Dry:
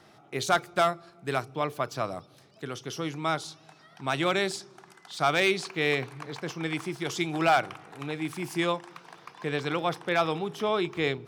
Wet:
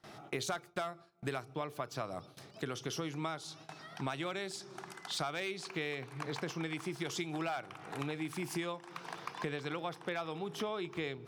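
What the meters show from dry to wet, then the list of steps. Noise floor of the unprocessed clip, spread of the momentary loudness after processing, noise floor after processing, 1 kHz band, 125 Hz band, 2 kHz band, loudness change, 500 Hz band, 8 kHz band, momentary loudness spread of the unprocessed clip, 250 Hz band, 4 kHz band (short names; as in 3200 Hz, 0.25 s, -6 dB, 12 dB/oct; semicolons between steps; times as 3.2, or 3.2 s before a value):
-57 dBFS, 7 LU, -58 dBFS, -12.0 dB, -7.0 dB, -11.0 dB, -11.0 dB, -11.0 dB, -5.5 dB, 14 LU, -8.0 dB, -9.0 dB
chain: compressor 12:1, threshold -39 dBFS, peak gain reduction 21 dB; gate with hold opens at -47 dBFS; gain +4.5 dB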